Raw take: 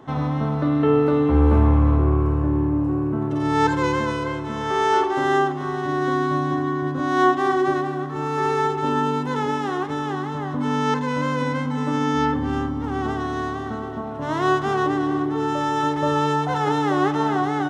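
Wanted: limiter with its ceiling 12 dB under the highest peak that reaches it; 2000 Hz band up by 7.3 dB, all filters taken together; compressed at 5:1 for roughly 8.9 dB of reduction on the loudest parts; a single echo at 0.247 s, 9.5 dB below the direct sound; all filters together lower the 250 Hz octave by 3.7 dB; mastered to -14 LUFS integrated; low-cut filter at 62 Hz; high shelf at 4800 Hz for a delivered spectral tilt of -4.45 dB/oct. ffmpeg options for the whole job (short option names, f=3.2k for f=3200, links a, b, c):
-af "highpass=62,equalizer=f=250:t=o:g=-5,equalizer=f=2k:t=o:g=9,highshelf=f=4.8k:g=4,acompressor=threshold=-22dB:ratio=5,alimiter=limit=-23.5dB:level=0:latency=1,aecho=1:1:247:0.335,volume=18dB"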